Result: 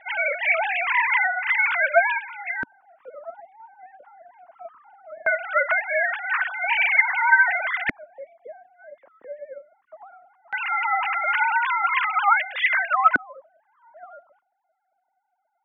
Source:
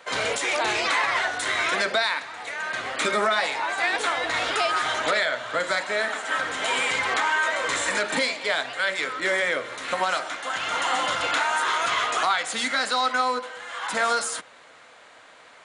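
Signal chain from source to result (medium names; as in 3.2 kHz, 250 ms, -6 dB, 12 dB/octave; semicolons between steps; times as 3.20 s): formants replaced by sine waves; LFO low-pass square 0.19 Hz 270–2400 Hz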